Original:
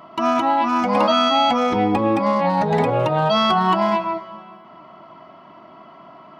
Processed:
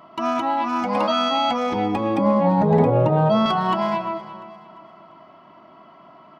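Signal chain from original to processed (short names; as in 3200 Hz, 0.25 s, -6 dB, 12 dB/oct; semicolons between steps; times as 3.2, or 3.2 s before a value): 2.18–3.46 tilt shelf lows +9 dB, about 1100 Hz; on a send: feedback echo 0.347 s, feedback 45%, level -17.5 dB; on the sum: gain -4 dB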